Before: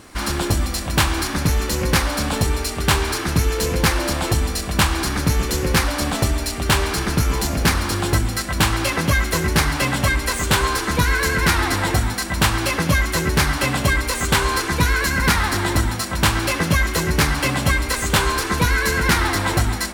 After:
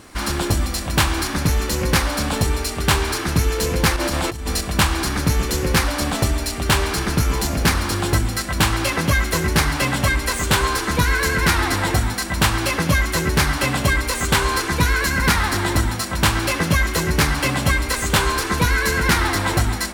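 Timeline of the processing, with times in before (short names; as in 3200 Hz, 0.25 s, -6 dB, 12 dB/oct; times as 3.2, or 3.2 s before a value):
3.96–4.61 negative-ratio compressor -22 dBFS, ratio -0.5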